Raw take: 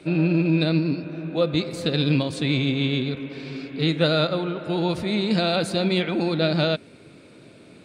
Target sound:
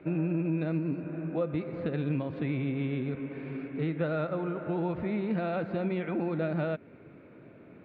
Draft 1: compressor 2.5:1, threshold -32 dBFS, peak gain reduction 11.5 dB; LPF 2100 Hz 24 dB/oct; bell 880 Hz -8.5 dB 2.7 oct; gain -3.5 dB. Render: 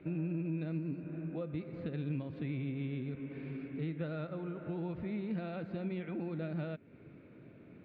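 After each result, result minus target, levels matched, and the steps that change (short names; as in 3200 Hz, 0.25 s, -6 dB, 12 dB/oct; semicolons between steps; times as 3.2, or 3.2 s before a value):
1000 Hz band -5.0 dB; compressor: peak gain reduction +4 dB
remove: bell 880 Hz -8.5 dB 2.7 oct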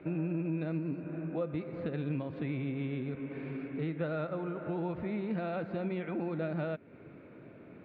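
compressor: peak gain reduction +4 dB
change: compressor 2.5:1, threshold -25 dBFS, peak gain reduction 7.5 dB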